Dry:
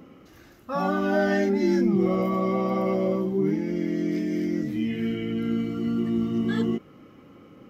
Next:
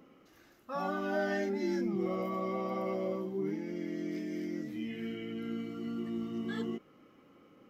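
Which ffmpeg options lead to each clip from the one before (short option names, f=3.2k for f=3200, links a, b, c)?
-af "equalizer=f=70:t=o:w=2.9:g=-10,volume=-8dB"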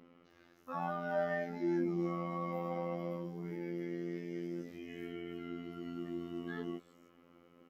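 -filter_complex "[0:a]acrossover=split=2500[a][b];[b]acompressor=threshold=-59dB:ratio=4:attack=1:release=60[c];[a][c]amix=inputs=2:normalize=0,afftfilt=real='hypot(re,im)*cos(PI*b)':imag='0':win_size=2048:overlap=0.75,acrossover=split=5500[d][e];[e]adelay=310[f];[d][f]amix=inputs=2:normalize=0,volume=1dB"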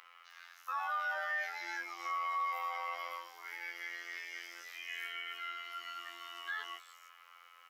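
-af "highpass=f=1.1k:w=0.5412,highpass=f=1.1k:w=1.3066,alimiter=level_in=17.5dB:limit=-24dB:level=0:latency=1:release=14,volume=-17.5dB,volume=13.5dB"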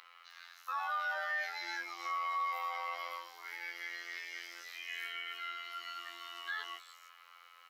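-af "equalizer=f=4.1k:t=o:w=0.29:g=9"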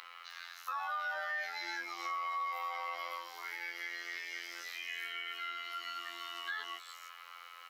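-filter_complex "[0:a]acrossover=split=280[a][b];[b]acompressor=threshold=-49dB:ratio=2[c];[a][c]amix=inputs=2:normalize=0,volume=7dB"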